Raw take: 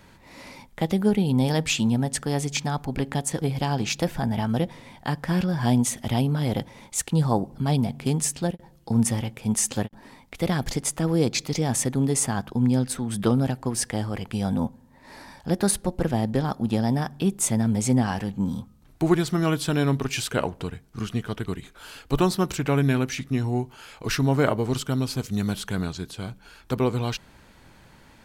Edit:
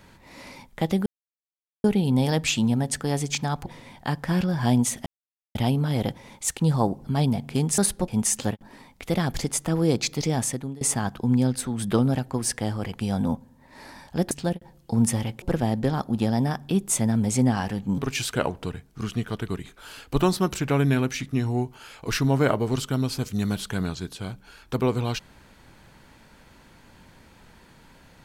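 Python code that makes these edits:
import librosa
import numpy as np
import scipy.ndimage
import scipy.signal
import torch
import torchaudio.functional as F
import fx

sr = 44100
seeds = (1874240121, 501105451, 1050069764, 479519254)

y = fx.edit(x, sr, fx.insert_silence(at_s=1.06, length_s=0.78),
    fx.cut(start_s=2.88, length_s=1.78),
    fx.insert_silence(at_s=6.06, length_s=0.49),
    fx.swap(start_s=8.29, length_s=1.11, other_s=15.63, other_length_s=0.3),
    fx.fade_out_to(start_s=11.67, length_s=0.46, floor_db=-24.0),
    fx.cut(start_s=18.49, length_s=1.47), tone=tone)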